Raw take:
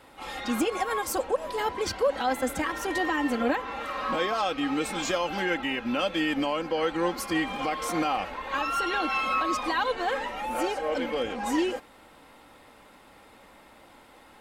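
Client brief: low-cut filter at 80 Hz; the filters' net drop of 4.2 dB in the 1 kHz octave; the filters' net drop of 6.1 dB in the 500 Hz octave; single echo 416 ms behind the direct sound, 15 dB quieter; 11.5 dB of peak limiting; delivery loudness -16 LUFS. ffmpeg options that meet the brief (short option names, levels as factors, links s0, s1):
-af "highpass=80,equalizer=f=500:t=o:g=-6.5,equalizer=f=1000:t=o:g=-3.5,alimiter=level_in=1.88:limit=0.0631:level=0:latency=1,volume=0.531,aecho=1:1:416:0.178,volume=11.9"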